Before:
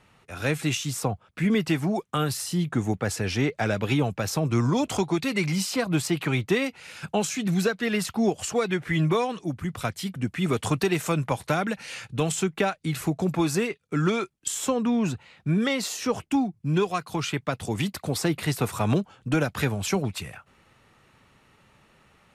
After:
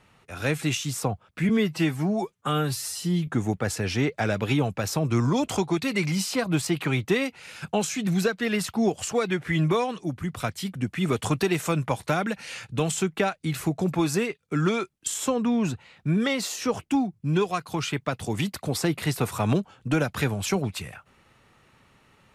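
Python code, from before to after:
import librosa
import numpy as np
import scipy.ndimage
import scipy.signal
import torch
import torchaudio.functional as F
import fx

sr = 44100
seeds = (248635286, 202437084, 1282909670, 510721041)

y = fx.edit(x, sr, fx.stretch_span(start_s=1.49, length_s=1.19, factor=1.5), tone=tone)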